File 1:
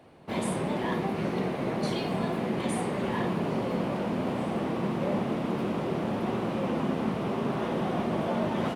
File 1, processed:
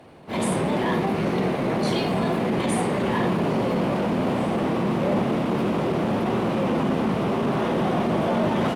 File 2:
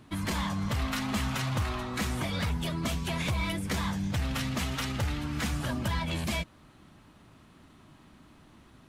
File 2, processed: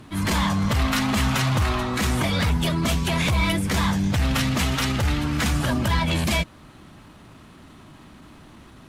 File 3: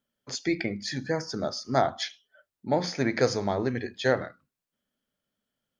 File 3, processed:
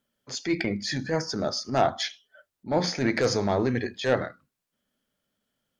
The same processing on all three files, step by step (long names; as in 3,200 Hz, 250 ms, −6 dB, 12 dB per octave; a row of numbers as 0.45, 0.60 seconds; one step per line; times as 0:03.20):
sine wavefolder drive 4 dB, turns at −9 dBFS
transient designer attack −8 dB, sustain −1 dB
normalise the peak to −12 dBFS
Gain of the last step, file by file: −0.5, +2.0, −3.0 decibels